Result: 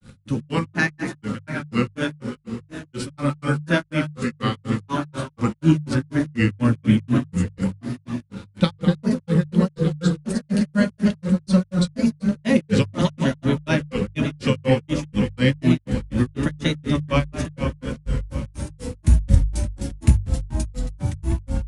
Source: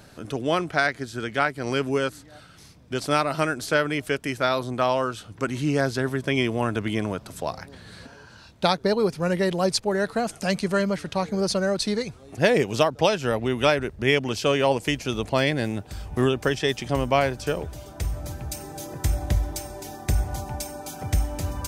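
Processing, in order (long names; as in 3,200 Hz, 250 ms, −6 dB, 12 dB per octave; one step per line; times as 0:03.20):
feedback delay that plays each chunk backwards 300 ms, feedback 67%, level −8.5 dB
tape delay 171 ms, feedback 71%, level −6.5 dB, low-pass 1,600 Hz
on a send at −1.5 dB: convolution reverb, pre-delay 3 ms
on the sum: granular cloud 179 ms, grains 4.1 per second, spray 22 ms, pitch spread up and down by 3 semitones
parametric band 5,200 Hz −2.5 dB
in parallel at −11.5 dB: bit-depth reduction 6 bits, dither none
on the sum: Chebyshev low-pass filter 11,000 Hz, order 8
parametric band 680 Hz −13.5 dB 0.8 octaves
mains-hum notches 50/100/150 Hz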